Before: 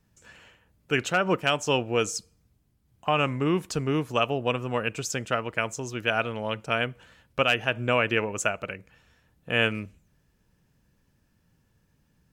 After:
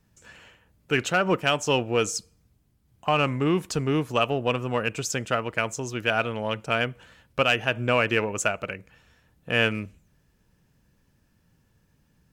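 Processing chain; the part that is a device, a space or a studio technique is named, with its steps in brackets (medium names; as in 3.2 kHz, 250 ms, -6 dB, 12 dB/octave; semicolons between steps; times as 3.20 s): parallel distortion (in parallel at -11 dB: hard clipper -23.5 dBFS, distortion -8 dB)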